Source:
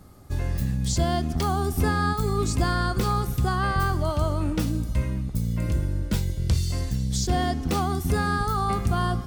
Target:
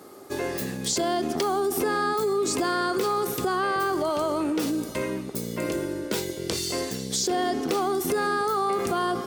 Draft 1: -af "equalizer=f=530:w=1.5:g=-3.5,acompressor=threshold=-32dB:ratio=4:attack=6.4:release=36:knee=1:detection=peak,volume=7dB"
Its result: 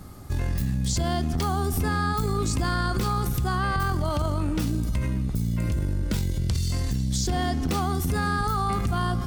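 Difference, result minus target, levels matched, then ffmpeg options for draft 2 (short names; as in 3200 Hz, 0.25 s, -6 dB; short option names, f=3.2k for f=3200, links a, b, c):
500 Hz band -8.0 dB
-af "highpass=f=400:t=q:w=3,equalizer=f=530:w=1.5:g=-3.5,acompressor=threshold=-32dB:ratio=4:attack=6.4:release=36:knee=1:detection=peak,volume=7dB"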